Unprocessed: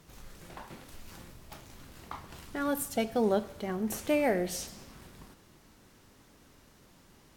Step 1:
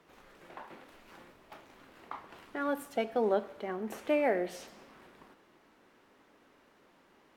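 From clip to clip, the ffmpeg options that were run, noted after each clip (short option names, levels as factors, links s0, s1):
-filter_complex "[0:a]acrossover=split=250 3100:gain=0.112 1 0.178[s0][s1][s2];[s0][s1][s2]amix=inputs=3:normalize=0"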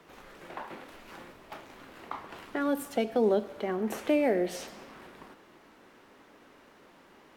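-filter_complex "[0:a]acrossover=split=490|3000[s0][s1][s2];[s1]acompressor=threshold=0.00891:ratio=6[s3];[s0][s3][s2]amix=inputs=3:normalize=0,volume=2.24"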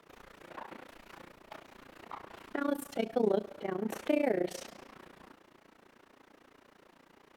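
-af "tremolo=f=29:d=0.919"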